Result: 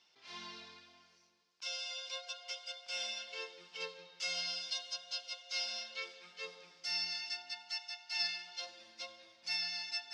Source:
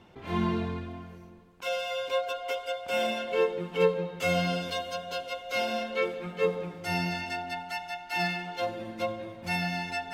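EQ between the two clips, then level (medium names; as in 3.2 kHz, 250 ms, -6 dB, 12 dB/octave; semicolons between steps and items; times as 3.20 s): four-pole ladder low-pass 5.7 kHz, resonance 65%; differentiator; +9.5 dB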